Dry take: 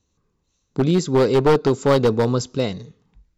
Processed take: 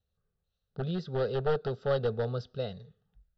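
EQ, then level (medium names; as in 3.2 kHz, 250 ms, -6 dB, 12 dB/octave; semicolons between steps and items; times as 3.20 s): distance through air 140 m; static phaser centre 1.5 kHz, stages 8; -9.0 dB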